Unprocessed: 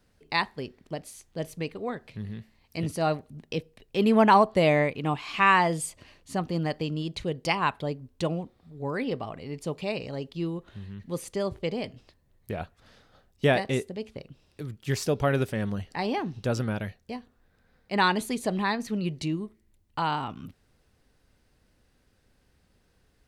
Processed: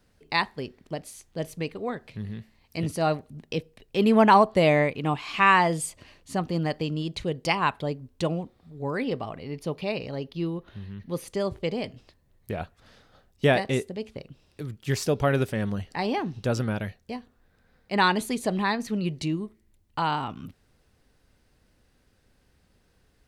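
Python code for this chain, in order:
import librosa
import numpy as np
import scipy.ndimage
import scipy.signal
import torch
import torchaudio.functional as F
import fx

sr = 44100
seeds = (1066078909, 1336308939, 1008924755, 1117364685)

y = fx.peak_eq(x, sr, hz=7700.0, db=-12.0, octaves=0.37, at=(9.37, 11.28))
y = y * 10.0 ** (1.5 / 20.0)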